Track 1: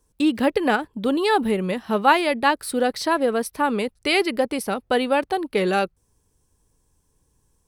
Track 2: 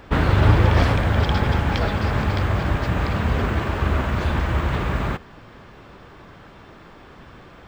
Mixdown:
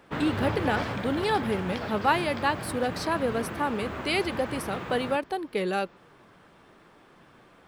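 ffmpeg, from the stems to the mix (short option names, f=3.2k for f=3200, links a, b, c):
-filter_complex "[0:a]volume=-7dB[a];[1:a]highpass=150,flanger=delay=5.7:depth=6.2:regen=78:speed=0.84:shape=sinusoidal,volume=-5.5dB[b];[a][b]amix=inputs=2:normalize=0"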